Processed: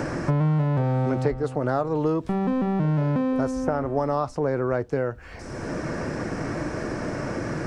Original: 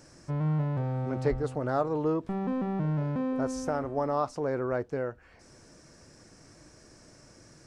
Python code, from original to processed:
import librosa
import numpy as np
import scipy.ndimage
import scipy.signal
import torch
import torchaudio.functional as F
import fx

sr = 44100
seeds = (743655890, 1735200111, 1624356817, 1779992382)

y = fx.band_squash(x, sr, depth_pct=100)
y = y * librosa.db_to_amplitude(5.5)